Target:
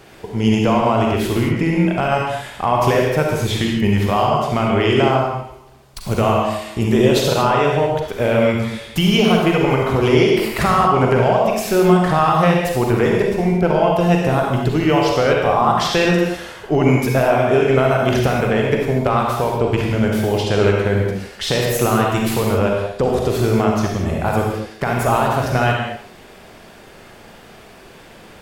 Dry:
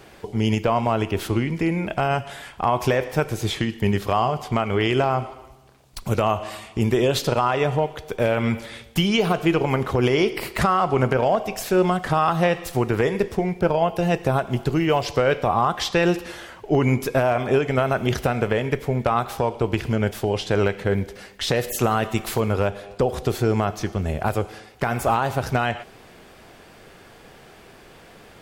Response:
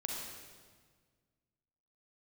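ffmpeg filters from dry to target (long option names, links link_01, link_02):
-filter_complex "[1:a]atrim=start_sample=2205,afade=type=out:start_time=0.29:duration=0.01,atrim=end_sample=13230,asetrate=43218,aresample=44100[link_01];[0:a][link_01]afir=irnorm=-1:irlink=0,volume=4dB"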